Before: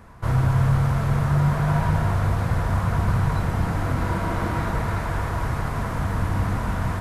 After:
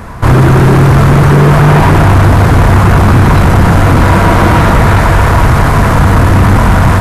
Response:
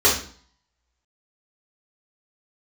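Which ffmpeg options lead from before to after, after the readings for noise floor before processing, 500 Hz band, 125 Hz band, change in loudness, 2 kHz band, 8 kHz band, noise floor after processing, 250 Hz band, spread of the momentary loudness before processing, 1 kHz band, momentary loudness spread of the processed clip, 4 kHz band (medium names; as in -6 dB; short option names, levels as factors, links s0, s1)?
-27 dBFS, +20.0 dB, +16.0 dB, +17.0 dB, +19.0 dB, +18.5 dB, -7 dBFS, +18.5 dB, 6 LU, +18.0 dB, 2 LU, +19.5 dB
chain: -af "acontrast=40,aeval=exprs='0.531*sin(PI/2*2.51*val(0)/0.531)':c=same,volume=1.58"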